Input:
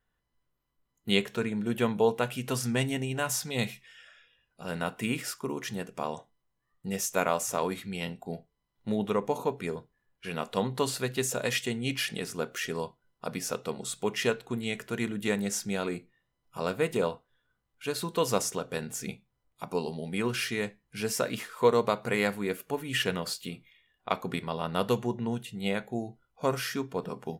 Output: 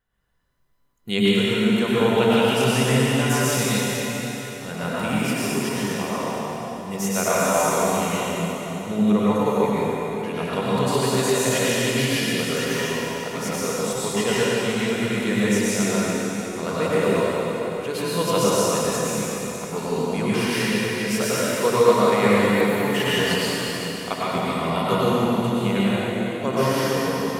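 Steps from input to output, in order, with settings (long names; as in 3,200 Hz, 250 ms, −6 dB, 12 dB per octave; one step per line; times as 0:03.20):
0:02.00–0:02.55: parametric band 3,000 Hz +10.5 dB 0.7 octaves
convolution reverb RT60 4.2 s, pre-delay 88 ms, DRR −9 dB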